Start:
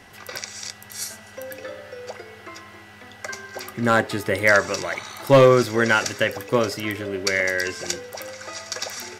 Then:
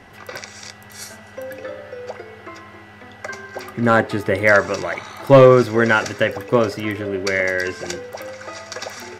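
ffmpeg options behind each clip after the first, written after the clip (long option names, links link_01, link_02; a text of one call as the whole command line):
ffmpeg -i in.wav -af "highshelf=frequency=3200:gain=-11.5,volume=4.5dB" out.wav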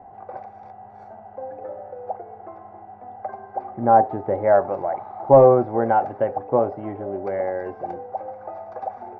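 ffmpeg -i in.wav -af "lowpass=frequency=770:width_type=q:width=9.4,volume=-8dB" out.wav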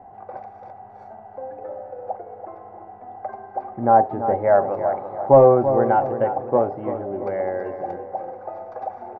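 ffmpeg -i in.wav -filter_complex "[0:a]asplit=2[link_01][link_02];[link_02]adelay=336,lowpass=frequency=1700:poles=1,volume=-9dB,asplit=2[link_03][link_04];[link_04]adelay=336,lowpass=frequency=1700:poles=1,volume=0.44,asplit=2[link_05][link_06];[link_06]adelay=336,lowpass=frequency=1700:poles=1,volume=0.44,asplit=2[link_07][link_08];[link_08]adelay=336,lowpass=frequency=1700:poles=1,volume=0.44,asplit=2[link_09][link_10];[link_10]adelay=336,lowpass=frequency=1700:poles=1,volume=0.44[link_11];[link_01][link_03][link_05][link_07][link_09][link_11]amix=inputs=6:normalize=0" out.wav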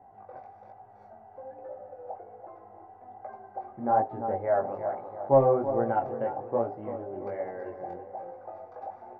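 ffmpeg -i in.wav -af "flanger=delay=17:depth=5.3:speed=1.2,volume=-6.5dB" out.wav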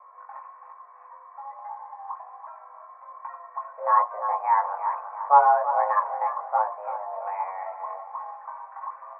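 ffmpeg -i in.wav -af "highpass=frequency=210:width_type=q:width=0.5412,highpass=frequency=210:width_type=q:width=1.307,lowpass=frequency=2000:width_type=q:width=0.5176,lowpass=frequency=2000:width_type=q:width=0.7071,lowpass=frequency=2000:width_type=q:width=1.932,afreqshift=300,volume=4dB" out.wav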